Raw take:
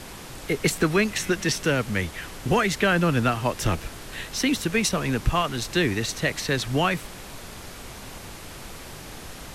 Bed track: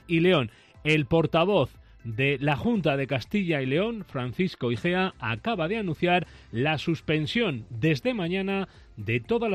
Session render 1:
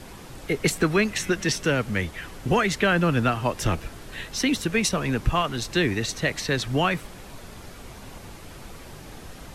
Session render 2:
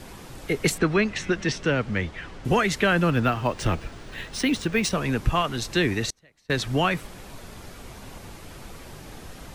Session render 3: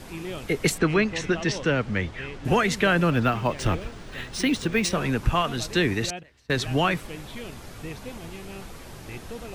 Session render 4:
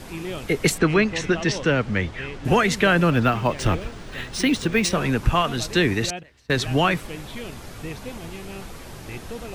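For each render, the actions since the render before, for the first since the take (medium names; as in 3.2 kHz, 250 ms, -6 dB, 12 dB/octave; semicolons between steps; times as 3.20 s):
noise reduction 6 dB, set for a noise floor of -41 dBFS
0.78–2.45 s: distance through air 100 m; 3.10–4.91 s: decimation joined by straight lines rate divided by 3×; 6.10–6.50 s: inverted gate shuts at -25 dBFS, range -32 dB
add bed track -14 dB
trim +3 dB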